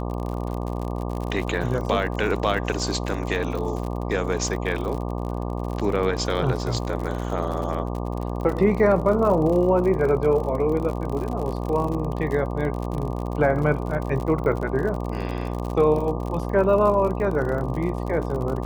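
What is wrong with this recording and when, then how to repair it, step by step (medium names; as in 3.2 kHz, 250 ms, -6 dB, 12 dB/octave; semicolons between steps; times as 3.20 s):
buzz 60 Hz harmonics 20 -28 dBFS
crackle 56 per s -29 dBFS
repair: de-click; de-hum 60 Hz, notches 20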